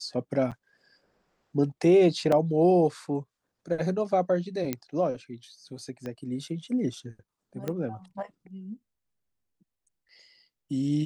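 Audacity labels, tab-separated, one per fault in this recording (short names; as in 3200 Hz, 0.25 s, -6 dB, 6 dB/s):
0.510000	0.520000	gap 7.1 ms
2.320000	2.320000	gap 3.6 ms
4.730000	4.730000	pop -14 dBFS
6.060000	6.060000	pop -24 dBFS
7.680000	7.680000	pop -18 dBFS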